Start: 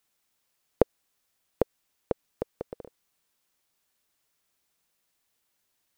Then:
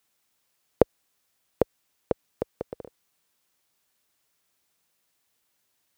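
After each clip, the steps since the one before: HPF 49 Hz; gain +2.5 dB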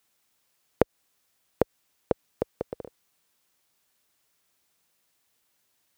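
compressor 3:1, threshold -19 dBFS, peak gain reduction 6.5 dB; gain +1.5 dB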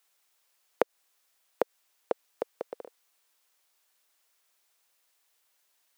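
HPF 500 Hz 12 dB/oct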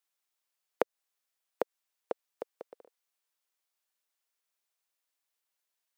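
upward expander 1.5:1, over -42 dBFS; gain -3 dB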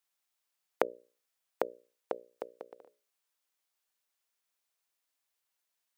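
notches 60/120/180/240/300/360/420/480/540/600 Hz; gain +1 dB

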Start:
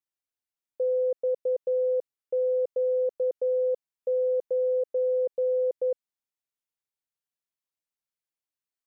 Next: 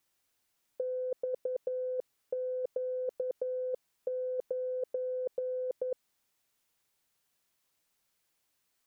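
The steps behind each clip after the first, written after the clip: negative-ratio compressor -33 dBFS, ratio -0.5; gain +3 dB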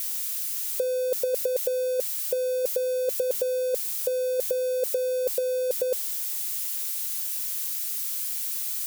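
switching spikes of -33.5 dBFS; gain +8.5 dB

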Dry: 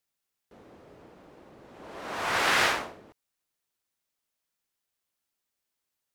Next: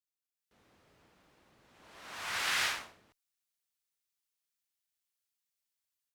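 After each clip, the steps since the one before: passive tone stack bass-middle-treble 5-5-5; AGC gain up to 9 dB; gain -6.5 dB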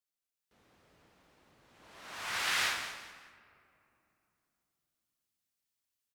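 frequency-shifting echo 0.192 s, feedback 32%, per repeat -31 Hz, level -10.5 dB; on a send at -15.5 dB: reverb RT60 3.1 s, pre-delay 49 ms

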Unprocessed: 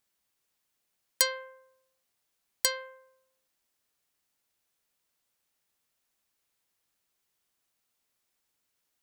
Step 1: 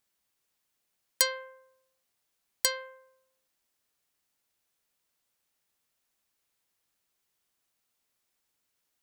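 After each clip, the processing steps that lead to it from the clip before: nothing audible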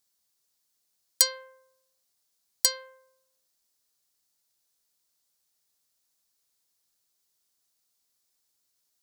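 resonant high shelf 3500 Hz +7 dB, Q 1.5; gain -3 dB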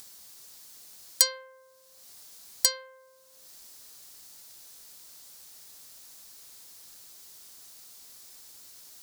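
upward compressor, threshold -29 dBFS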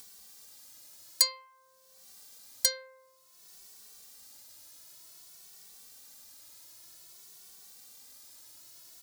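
endless flanger 2.2 ms +0.53 Hz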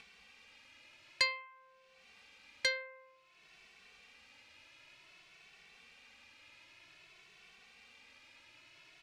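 synth low-pass 2500 Hz, resonance Q 5.3

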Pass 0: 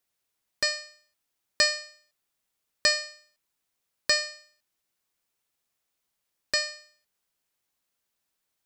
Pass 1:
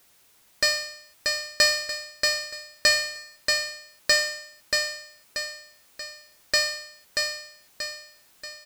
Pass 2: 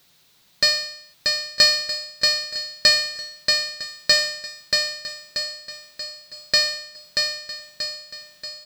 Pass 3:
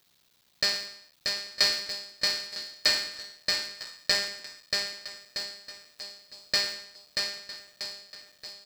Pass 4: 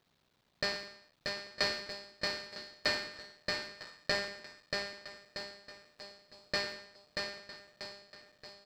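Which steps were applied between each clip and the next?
feedback echo 0.633 s, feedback 33%, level -5.5 dB; power-law curve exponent 0.7
fifteen-band EQ 160 Hz +11 dB, 4000 Hz +9 dB, 10000 Hz -5 dB; swung echo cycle 1.274 s, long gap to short 3:1, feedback 32%, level -17 dB
cycle switcher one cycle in 3, muted; gain -6.5 dB
LPF 1100 Hz 6 dB/oct; gain +1.5 dB

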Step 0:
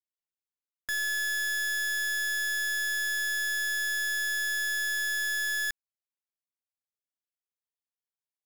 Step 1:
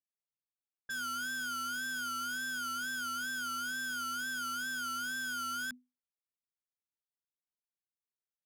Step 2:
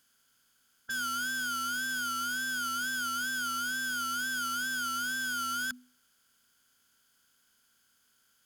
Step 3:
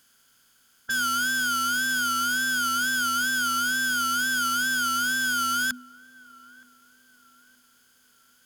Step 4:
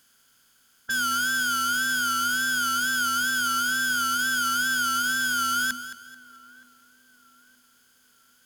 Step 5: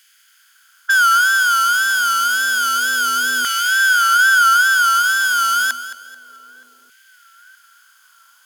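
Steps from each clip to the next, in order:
wow and flutter 110 cents; frequency shift -250 Hz; low-pass opened by the level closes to 470 Hz, open at -31.5 dBFS; gain -7.5 dB
per-bin compression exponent 0.6; gain +3 dB
narrowing echo 0.921 s, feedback 63%, band-pass 550 Hz, level -20 dB; gain +8 dB
lo-fi delay 0.218 s, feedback 35%, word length 9-bit, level -12.5 dB
LFO high-pass saw down 0.29 Hz 380–2100 Hz; gain +6.5 dB

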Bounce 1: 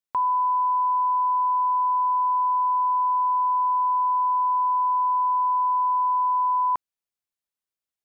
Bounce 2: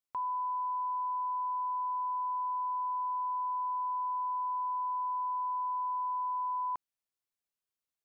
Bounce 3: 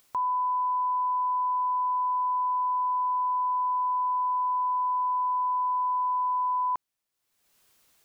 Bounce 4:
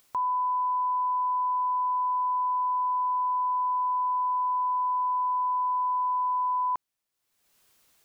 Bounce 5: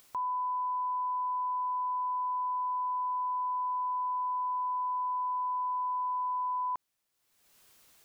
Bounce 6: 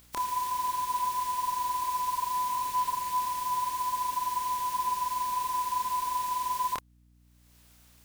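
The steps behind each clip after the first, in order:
limiter -27.5 dBFS, peak gain reduction 8.5 dB; gain -3 dB
upward compressor, threshold -54 dBFS; gain +7 dB
nothing audible
limiter -32 dBFS, peak gain reduction 8.5 dB; gain +3 dB
spectral contrast lowered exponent 0.41; chorus voices 4, 1.3 Hz, delay 28 ms, depth 3 ms; hum 60 Hz, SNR 30 dB; gain +4.5 dB

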